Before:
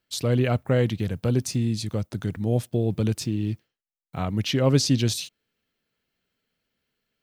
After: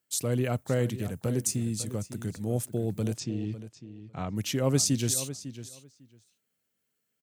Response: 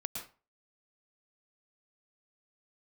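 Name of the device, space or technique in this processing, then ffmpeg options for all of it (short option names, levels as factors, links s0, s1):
budget condenser microphone: -filter_complex "[0:a]highpass=87,highshelf=f=5700:t=q:w=1.5:g=10,asettb=1/sr,asplit=3[s0][s1][s2];[s0]atrim=end=3.164[s3];[s1]atrim=start=3.16:end=4.36,asetpts=PTS-STARTPTS,afade=t=in:d=0.004:c=qsin,afade=t=out:st=1.196:d=0.004:c=qsin,lowpass=f=5800:w=0.5412,lowpass=f=5800:w=1.3066[s4];[s2]atrim=start=4.356[s5];[s3][s4]acrossfade=d=0.004:c1=hsin:c2=qsin[s6];[s6][s5]acrossfade=d=0.004:c1=qsin:c2=hsin,asplit=2[s7][s8];[s8]adelay=551,lowpass=f=4600:p=1,volume=0.224,asplit=2[s9][s10];[s10]adelay=551,lowpass=f=4600:p=1,volume=0.15[s11];[s7][s9][s11]amix=inputs=3:normalize=0,volume=0.531"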